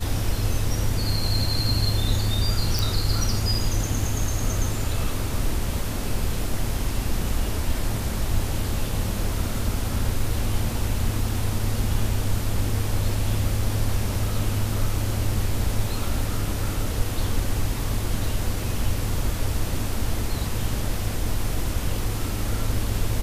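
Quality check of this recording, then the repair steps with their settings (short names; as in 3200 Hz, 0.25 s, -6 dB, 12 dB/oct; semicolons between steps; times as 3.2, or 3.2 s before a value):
2.79 pop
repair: de-click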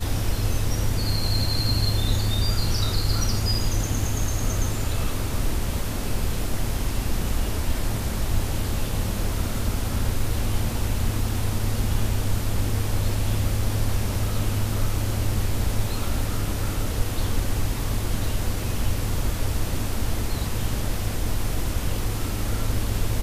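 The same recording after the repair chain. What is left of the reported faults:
none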